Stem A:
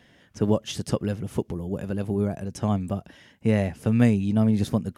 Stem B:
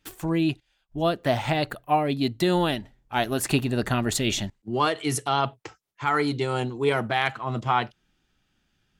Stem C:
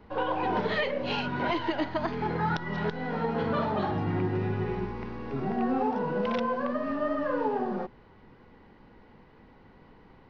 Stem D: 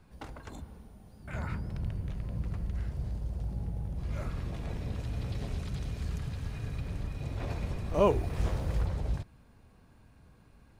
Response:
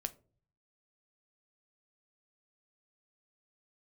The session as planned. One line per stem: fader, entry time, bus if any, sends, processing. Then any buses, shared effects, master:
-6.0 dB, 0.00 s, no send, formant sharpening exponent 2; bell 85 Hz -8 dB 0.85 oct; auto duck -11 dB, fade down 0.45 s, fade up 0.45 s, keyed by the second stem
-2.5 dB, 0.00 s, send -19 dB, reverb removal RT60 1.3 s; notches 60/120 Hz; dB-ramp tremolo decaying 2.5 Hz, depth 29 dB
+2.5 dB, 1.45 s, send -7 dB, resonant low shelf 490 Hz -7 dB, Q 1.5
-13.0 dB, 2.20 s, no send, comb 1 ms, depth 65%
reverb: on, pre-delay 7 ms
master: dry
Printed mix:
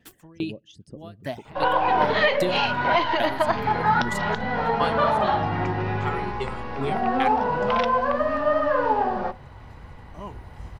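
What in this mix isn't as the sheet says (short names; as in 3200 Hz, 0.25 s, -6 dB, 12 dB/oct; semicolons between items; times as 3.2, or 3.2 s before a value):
stem A: missing bell 85 Hz -8 dB 0.85 oct; reverb return +8.0 dB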